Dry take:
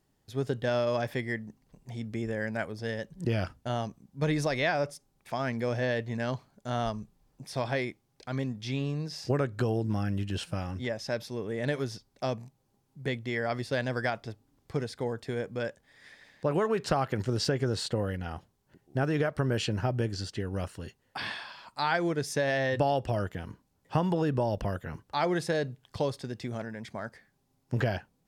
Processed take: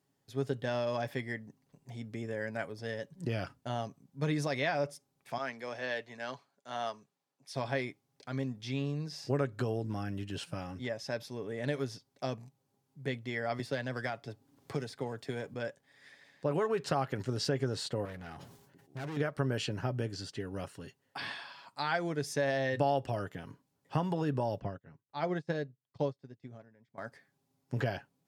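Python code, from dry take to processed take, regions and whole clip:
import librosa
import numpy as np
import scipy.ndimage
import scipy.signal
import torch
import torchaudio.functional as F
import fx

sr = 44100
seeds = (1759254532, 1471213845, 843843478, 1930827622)

y = fx.chain(x, sr, fx.weighting(curve='A'),
    fx.band_widen(depth_pct=40), at=(5.38, 7.55))
y = fx.chain(y, sr, fx.halfwave_gain(db=-3.0),
    fx.band_squash(depth_pct=70), at=(13.59, 15.54))
y = fx.chain(y, sr, fx.clip_hard(threshold_db=-34.0),
    fx.sustainer(db_per_s=61.0), at=(18.05, 19.17))
y = fx.chain(y, sr, fx.lowpass(hz=8000.0, slope=24),
    fx.tilt_eq(slope=-1.5),
    fx.upward_expand(threshold_db=-43.0, expansion=2.5), at=(24.6, 26.98))
y = scipy.signal.sosfilt(scipy.signal.butter(2, 110.0, 'highpass', fs=sr, output='sos'), y)
y = y + 0.34 * np.pad(y, (int(7.2 * sr / 1000.0), 0))[:len(y)]
y = y * librosa.db_to_amplitude(-4.5)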